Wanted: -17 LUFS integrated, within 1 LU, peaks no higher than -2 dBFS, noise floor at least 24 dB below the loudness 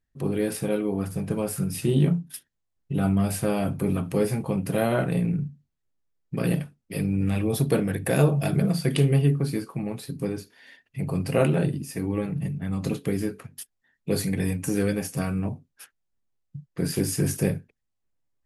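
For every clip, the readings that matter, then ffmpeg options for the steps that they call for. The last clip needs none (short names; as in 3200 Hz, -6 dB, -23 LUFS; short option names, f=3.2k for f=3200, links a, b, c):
loudness -26.0 LUFS; peak -7.0 dBFS; loudness target -17.0 LUFS
-> -af "volume=9dB,alimiter=limit=-2dB:level=0:latency=1"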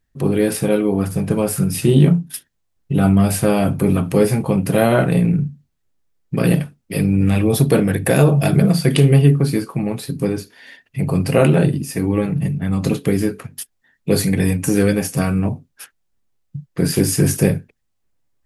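loudness -17.5 LUFS; peak -2.0 dBFS; noise floor -69 dBFS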